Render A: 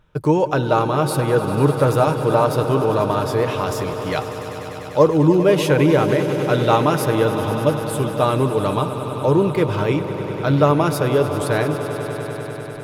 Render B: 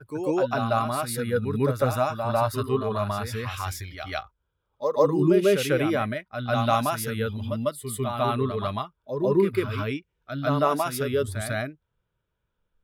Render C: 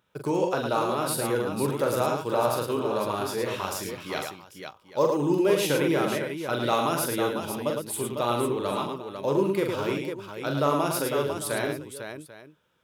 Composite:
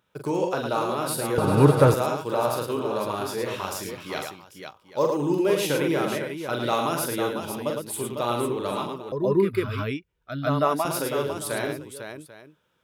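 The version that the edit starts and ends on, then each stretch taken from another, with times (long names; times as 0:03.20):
C
0:01.38–0:01.94: punch in from A
0:09.12–0:10.85: punch in from B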